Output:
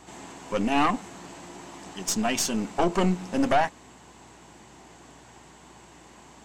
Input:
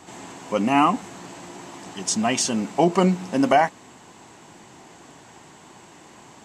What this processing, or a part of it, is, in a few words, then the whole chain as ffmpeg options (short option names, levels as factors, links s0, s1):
valve amplifier with mains hum: -af "aeval=exprs='(tanh(5.62*val(0)+0.65)-tanh(0.65))/5.62':c=same,aeval=exprs='val(0)+0.001*(sin(2*PI*60*n/s)+sin(2*PI*2*60*n/s)/2+sin(2*PI*3*60*n/s)/3+sin(2*PI*4*60*n/s)/4+sin(2*PI*5*60*n/s)/5)':c=same"